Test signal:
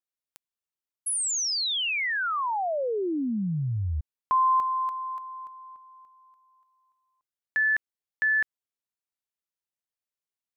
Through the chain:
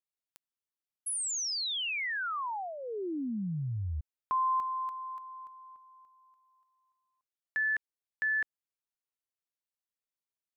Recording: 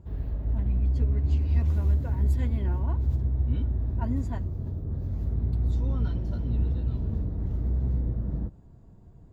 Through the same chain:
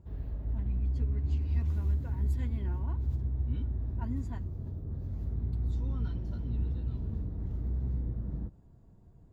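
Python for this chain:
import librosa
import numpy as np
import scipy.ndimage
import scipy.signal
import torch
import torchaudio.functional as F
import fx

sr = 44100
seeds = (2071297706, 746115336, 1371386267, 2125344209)

y = fx.dynamic_eq(x, sr, hz=590.0, q=2.3, threshold_db=-49.0, ratio=4.0, max_db=-8)
y = y * 10.0 ** (-6.0 / 20.0)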